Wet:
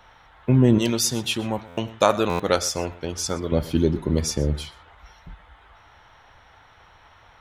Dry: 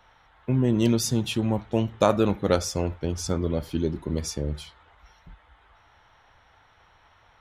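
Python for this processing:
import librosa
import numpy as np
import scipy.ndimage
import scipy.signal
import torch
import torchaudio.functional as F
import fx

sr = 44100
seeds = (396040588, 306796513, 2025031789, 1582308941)

y = fx.low_shelf(x, sr, hz=420.0, db=-12.0, at=(0.78, 3.52))
y = y + 10.0 ** (-19.5 / 20.0) * np.pad(y, (int(123 * sr / 1000.0), 0))[:len(y)]
y = fx.buffer_glitch(y, sr, at_s=(1.67, 2.29), block=512, repeats=8)
y = y * librosa.db_to_amplitude(6.0)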